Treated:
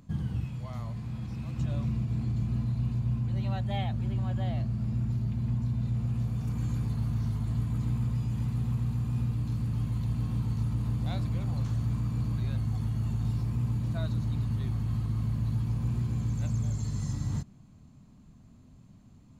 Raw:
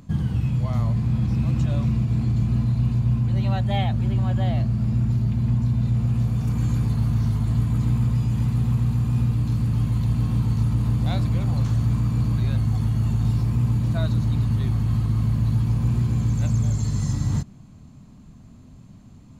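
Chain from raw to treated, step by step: 0.44–1.59 s: bass shelf 450 Hz -6.5 dB; trim -8.5 dB

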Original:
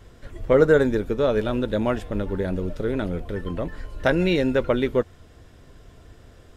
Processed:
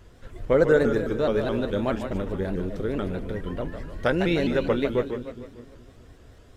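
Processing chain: two-band feedback delay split 330 Hz, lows 208 ms, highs 150 ms, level -8 dB; vibrato with a chosen wave saw up 4.7 Hz, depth 160 cents; trim -3 dB

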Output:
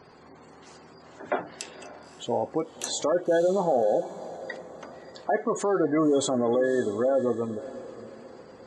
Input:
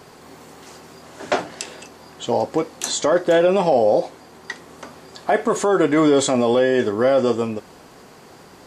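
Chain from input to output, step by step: spectral gate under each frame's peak -20 dB strong; echo that smears into a reverb 569 ms, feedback 43%, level -15.5 dB; trim -7 dB

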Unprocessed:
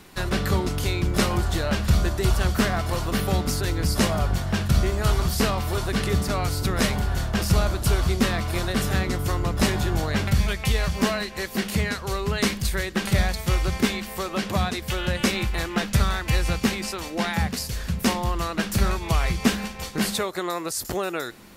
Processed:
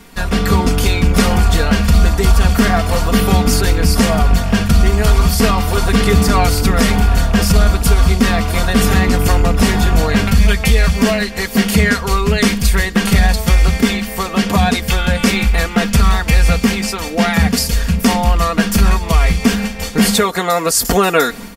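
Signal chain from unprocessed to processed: rattle on loud lows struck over -23 dBFS, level -30 dBFS; bass shelf 150 Hz +3.5 dB; band-stop 3.9 kHz, Q 15; comb 4.3 ms, depth 74%; level rider; loudness maximiser +5.5 dB; trim -1 dB

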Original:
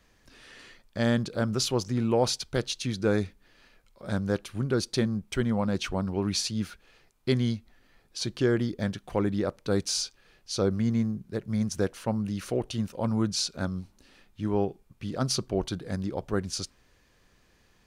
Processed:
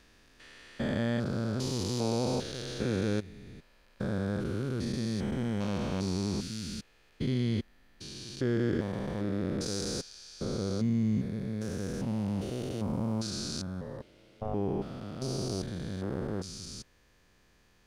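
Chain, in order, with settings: spectrogram pixelated in time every 400 ms; 13.81–14.54 s: ring modulator 330 Hz

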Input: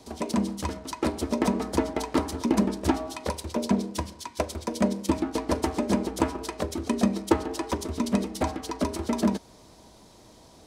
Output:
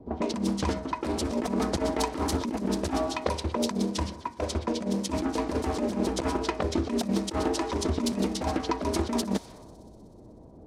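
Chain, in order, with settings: level-controlled noise filter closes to 400 Hz, open at -24.5 dBFS; compressor with a negative ratio -30 dBFS, ratio -1; on a send: feedback echo behind a high-pass 62 ms, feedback 85%, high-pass 4.1 kHz, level -21.5 dB; on the sum: loudspeaker Doppler distortion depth 0.19 ms; trim +2.5 dB

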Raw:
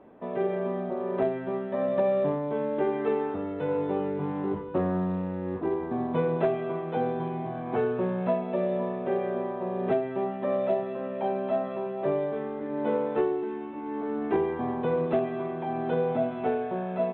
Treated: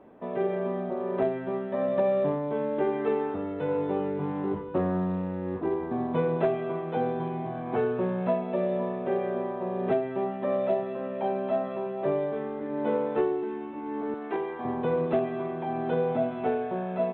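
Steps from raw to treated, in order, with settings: 14.14–14.65 s: high-pass 630 Hz 6 dB/octave

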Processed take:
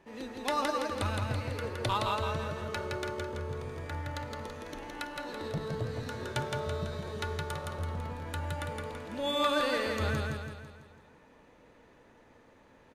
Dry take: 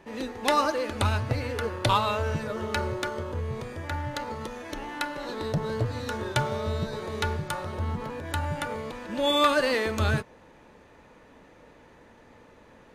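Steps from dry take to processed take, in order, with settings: feedback delay 166 ms, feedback 49%, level -3 dB; trim -8 dB

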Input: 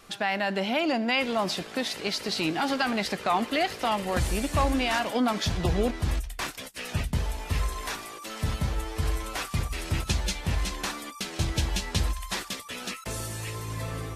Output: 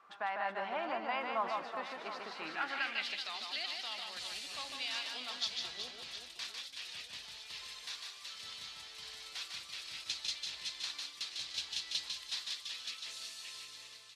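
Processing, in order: fade out at the end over 0.55 s; reverse bouncing-ball echo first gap 150 ms, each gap 1.5×, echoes 5; band-pass sweep 1.1 kHz -> 4.1 kHz, 2.35–3.30 s; trim -2.5 dB

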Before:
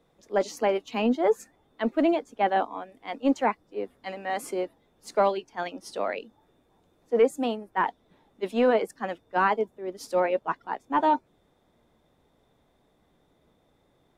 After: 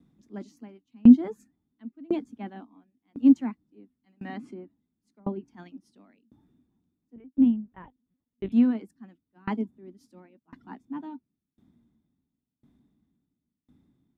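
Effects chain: resonant low shelf 360 Hz +12.5 dB, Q 3; 4.27–5.46 s: low-pass that closes with the level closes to 930 Hz, closed at -18 dBFS; 7.16–8.52 s: LPC vocoder at 8 kHz pitch kept; high-pass 46 Hz; sawtooth tremolo in dB decaying 0.95 Hz, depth 32 dB; trim -6 dB

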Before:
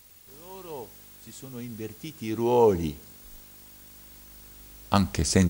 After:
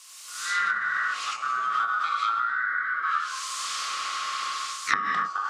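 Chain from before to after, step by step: split-band scrambler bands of 1 kHz; gated-style reverb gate 320 ms flat, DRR -3 dB; level rider gain up to 16 dB; frequency weighting ITU-R 468; compression 10:1, threshold -15 dBFS, peak gain reduction 12 dB; 2.15–5.05 s: ever faster or slower copies 128 ms, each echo +1 st, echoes 3, each echo -6 dB; low-pass that closes with the level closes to 950 Hz, closed at -14.5 dBFS; trim -2 dB

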